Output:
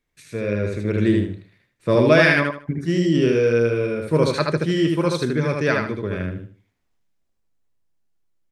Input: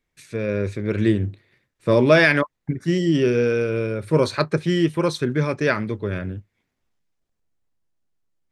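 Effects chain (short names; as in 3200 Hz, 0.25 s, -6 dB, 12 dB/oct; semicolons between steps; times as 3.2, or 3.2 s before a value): feedback echo 77 ms, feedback 27%, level -3 dB; gain -1 dB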